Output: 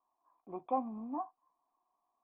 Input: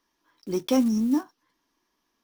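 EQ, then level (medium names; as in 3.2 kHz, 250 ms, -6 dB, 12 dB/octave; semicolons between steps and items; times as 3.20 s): cascade formant filter a; +7.5 dB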